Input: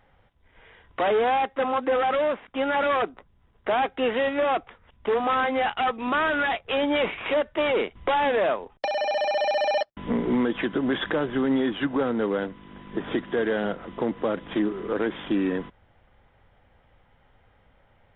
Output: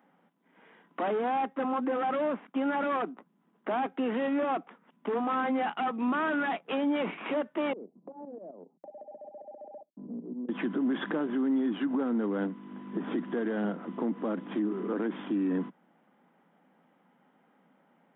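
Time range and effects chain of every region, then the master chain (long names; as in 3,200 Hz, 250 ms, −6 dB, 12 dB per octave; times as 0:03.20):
0:07.73–0:10.49: shaped tremolo saw up 7.7 Hz, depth 80% + Chebyshev low-pass filter 600 Hz, order 3 + downward compressor 4 to 1, threshold −40 dBFS
whole clip: octave-band graphic EQ 250/500/2,000/4,000 Hz +6/−5/−5/−12 dB; brickwall limiter −22 dBFS; Chebyshev high-pass filter 170 Hz, order 5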